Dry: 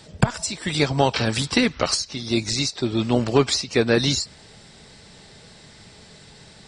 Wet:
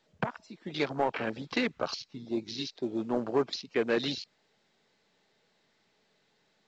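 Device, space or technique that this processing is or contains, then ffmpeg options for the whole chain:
telephone: -filter_complex "[0:a]afwtdn=0.0447,asettb=1/sr,asplit=3[link_01][link_02][link_03];[link_01]atrim=end=1.474[link_04];[link_02]atrim=start=1.47:end=2.25,asetpts=PTS-STARTPTS,afade=type=in:duration=0.004:curve=qsin,afade=type=out:start_time=0.776:duration=0.004:curve=qsin,asubboost=boost=10:cutoff=190[link_05];[link_03]atrim=start=2.246[link_06];[link_04][link_05]acrossfade=duration=0.004:curve1=hsin:curve2=qsin[link_07];[link_07][link_06]acrossfade=duration=0.004:curve1=qsin:curve2=hsin,highpass=260,lowpass=3600,asoftclip=type=tanh:threshold=-10.5dB,volume=-6.5dB" -ar 16000 -c:a pcm_mulaw

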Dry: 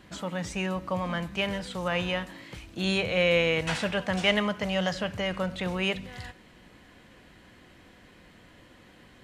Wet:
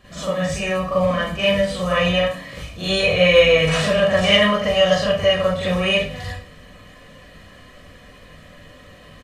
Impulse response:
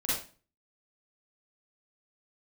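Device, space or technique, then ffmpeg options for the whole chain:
microphone above a desk: -filter_complex "[0:a]aecho=1:1:1.7:0.61[link_01];[1:a]atrim=start_sample=2205[link_02];[link_01][link_02]afir=irnorm=-1:irlink=0,volume=1.5dB"

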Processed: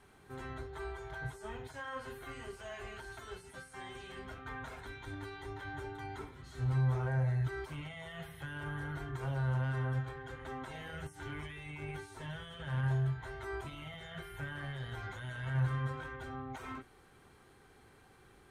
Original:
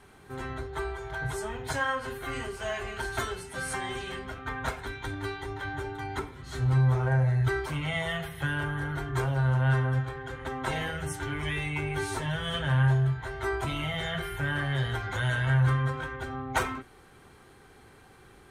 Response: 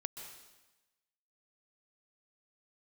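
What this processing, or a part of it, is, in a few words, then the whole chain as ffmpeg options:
de-esser from a sidechain: -filter_complex "[0:a]asplit=2[link_01][link_02];[link_02]highpass=4700,apad=whole_len=816012[link_03];[link_01][link_03]sidechaincompress=threshold=-52dB:ratio=10:attack=1.8:release=23,volume=-7dB"

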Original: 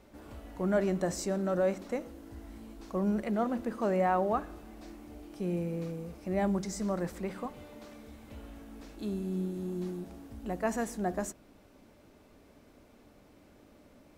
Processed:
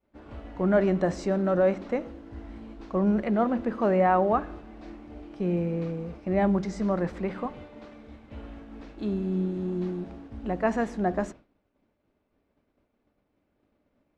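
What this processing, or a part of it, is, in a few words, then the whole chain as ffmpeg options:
hearing-loss simulation: -af "lowpass=3200,agate=range=-33dB:threshold=-45dB:ratio=3:detection=peak,volume=6dB"

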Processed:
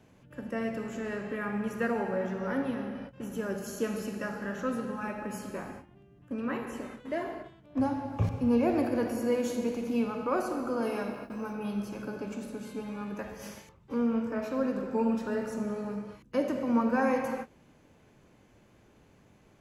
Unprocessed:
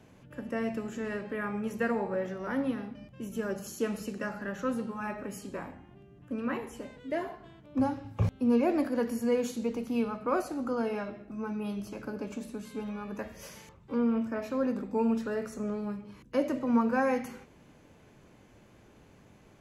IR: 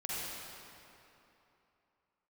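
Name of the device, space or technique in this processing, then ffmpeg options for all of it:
keyed gated reverb: -filter_complex "[0:a]asettb=1/sr,asplit=3[link_01][link_02][link_03];[link_01]atrim=end=10.824[link_04];[link_02]atrim=start=10.82:end=11.53,asetpts=PTS-STARTPTS,afade=type=in:duration=0.004:curve=qsin,afade=type=out:start_time=0.706:duration=0.004:curve=qsin,aemphasis=mode=production:type=50fm[link_05];[link_03]atrim=start=11.526[link_06];[link_04][link_05]acrossfade=duration=0.004:curve1=hsin:curve2=qsin[link_07];[link_07][link_06]acrossfade=duration=0.004:curve1=qsin:curve2=hsin,asplit=3[link_08][link_09][link_10];[1:a]atrim=start_sample=2205[link_11];[link_09][link_11]afir=irnorm=-1:irlink=0[link_12];[link_10]apad=whole_len=864782[link_13];[link_12][link_13]sidechaingate=range=-33dB:threshold=-48dB:ratio=16:detection=peak,volume=-5.5dB[link_14];[link_08][link_14]amix=inputs=2:normalize=0,volume=-3dB"

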